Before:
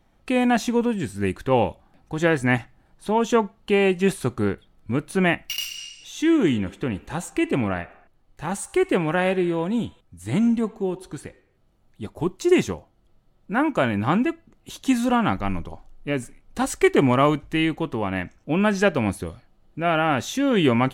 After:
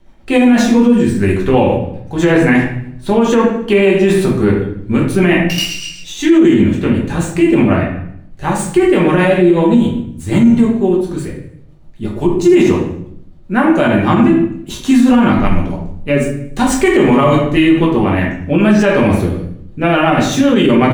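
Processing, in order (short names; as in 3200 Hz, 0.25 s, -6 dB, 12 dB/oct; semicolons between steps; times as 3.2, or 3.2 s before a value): median filter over 3 samples; rotary speaker horn 8 Hz; on a send: feedback echo 77 ms, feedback 55%, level -20 dB; on the sum: shoebox room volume 100 m³, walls mixed, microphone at 1.2 m; maximiser +10 dB; gain -1 dB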